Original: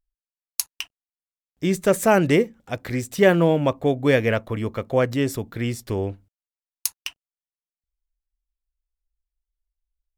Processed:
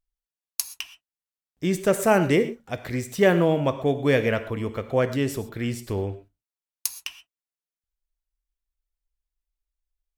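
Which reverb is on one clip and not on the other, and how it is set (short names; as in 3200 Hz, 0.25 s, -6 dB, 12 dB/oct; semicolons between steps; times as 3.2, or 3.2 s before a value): non-linear reverb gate 0.15 s flat, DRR 10 dB; gain -2.5 dB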